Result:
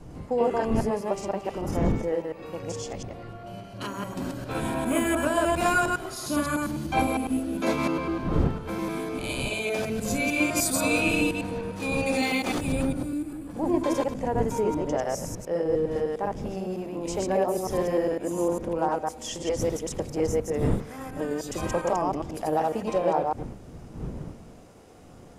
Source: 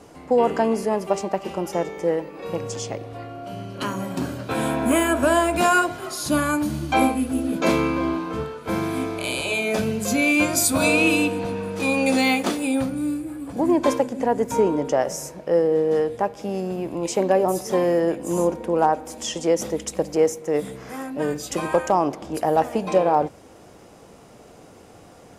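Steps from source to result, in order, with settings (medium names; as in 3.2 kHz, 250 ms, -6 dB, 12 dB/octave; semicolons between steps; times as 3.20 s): chunks repeated in reverse 101 ms, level -0.5 dB; wind noise 220 Hz -28 dBFS; trim -8 dB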